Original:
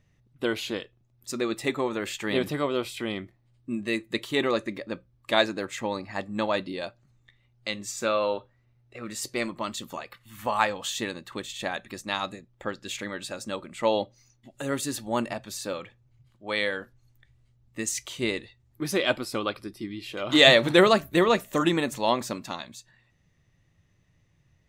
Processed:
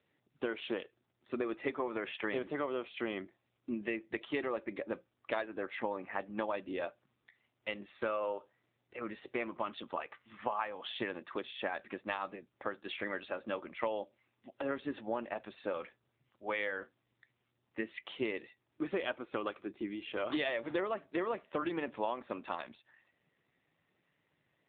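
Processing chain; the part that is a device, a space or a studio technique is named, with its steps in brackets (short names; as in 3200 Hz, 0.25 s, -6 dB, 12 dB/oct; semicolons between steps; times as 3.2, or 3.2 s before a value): voicemail (BPF 320–2700 Hz; compressor 8:1, threshold -32 dBFS, peak gain reduction 18.5 dB; gain +1 dB; AMR-NB 7.4 kbps 8000 Hz)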